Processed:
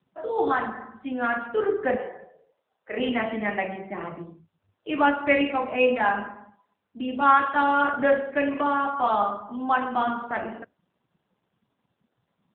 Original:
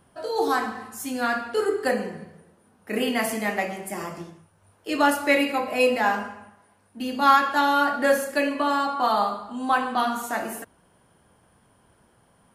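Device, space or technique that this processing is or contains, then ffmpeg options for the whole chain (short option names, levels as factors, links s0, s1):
mobile call with aggressive noise cancelling: -filter_complex "[0:a]asplit=3[s0][s1][s2];[s0]afade=t=out:st=1.95:d=0.02[s3];[s1]lowshelf=f=360:t=q:w=1.5:g=-13,afade=t=in:st=1.95:d=0.02,afade=t=out:st=2.97:d=0.02[s4];[s2]afade=t=in:st=2.97:d=0.02[s5];[s3][s4][s5]amix=inputs=3:normalize=0,highpass=110,afftdn=nr=14:nf=-47" -ar 8000 -c:a libopencore_amrnb -b:a 7950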